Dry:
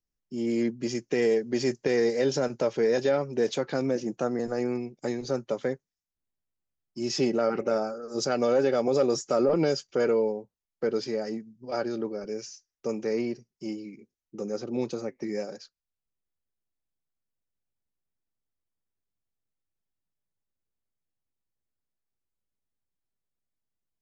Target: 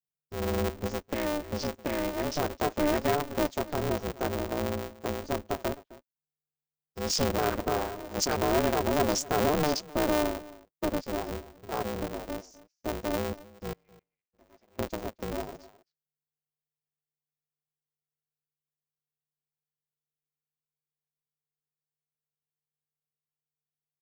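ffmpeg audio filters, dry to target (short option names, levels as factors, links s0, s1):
-filter_complex "[0:a]aemphasis=mode=production:type=50fm,afwtdn=0.0178,asettb=1/sr,asplit=3[s0][s1][s2];[s0]atrim=end=1.114[s3];[s1]atrim=start=1.11:end=2.37,asetpts=PTS-STARTPTS,afade=t=in:d=0.004:c=qsin,afade=t=out:st=1.256:d=0.004:c=qsin,acompressor=threshold=0.0355:ratio=2[s4];[s2]atrim=start=2.366[s5];[s3][s4]acrossfade=d=0.004:c1=hsin:c2=qsin[s6];[s6][s5]acrossfade=d=0.004:c1=qsin:c2=hsin,asettb=1/sr,asplit=3[s7][s8][s9];[s7]atrim=end=13.734[s10];[s8]atrim=start=13.73:end=14.79,asetpts=PTS-STARTPTS,afade=t=in:d=0.004:c=qsin,afade=t=out:st=1.056:d=0.004:c=qsin,bandpass=f=2100:t=q:w=4.2:csg=0[s11];[s9]atrim=start=14.786[s12];[s10][s11]acrossfade=d=0.004:c1=hsin:c2=qsin[s13];[s13][s12]acrossfade=d=0.004:c1=qsin:c2=hsin,asplit=2[s14][s15];[s15]adelay=260,highpass=300,lowpass=3400,asoftclip=type=hard:threshold=0.0944,volume=0.126[s16];[s14][s16]amix=inputs=2:normalize=0,aeval=exprs='val(0)*sgn(sin(2*PI*150*n/s))':c=same,volume=0.794"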